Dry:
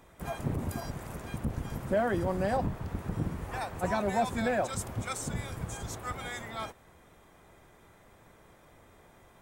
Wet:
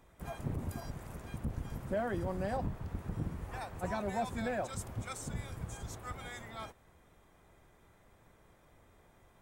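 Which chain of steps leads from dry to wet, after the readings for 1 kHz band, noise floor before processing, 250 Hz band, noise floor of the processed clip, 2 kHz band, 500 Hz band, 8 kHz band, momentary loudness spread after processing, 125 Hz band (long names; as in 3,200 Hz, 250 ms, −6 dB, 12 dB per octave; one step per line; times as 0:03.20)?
−7.0 dB, −59 dBFS, −6.0 dB, −65 dBFS, −7.0 dB, −7.0 dB, −7.0 dB, 9 LU, −4.5 dB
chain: low-shelf EQ 100 Hz +6 dB
level −7 dB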